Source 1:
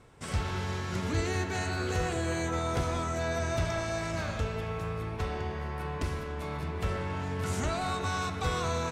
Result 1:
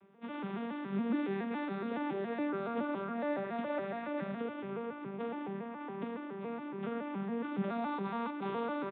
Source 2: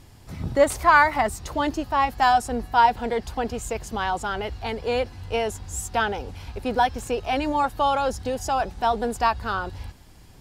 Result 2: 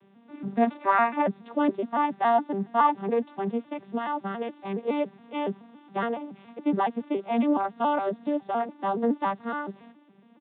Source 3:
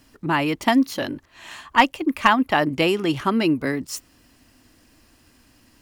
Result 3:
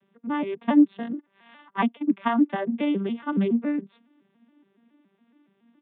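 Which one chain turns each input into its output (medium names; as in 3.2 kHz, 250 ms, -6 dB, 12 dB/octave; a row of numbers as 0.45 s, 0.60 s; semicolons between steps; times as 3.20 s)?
vocoder on a broken chord minor triad, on G3, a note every 140 ms; resampled via 8 kHz; trim -2.5 dB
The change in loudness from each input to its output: -5.0 LU, -4.0 LU, -4.0 LU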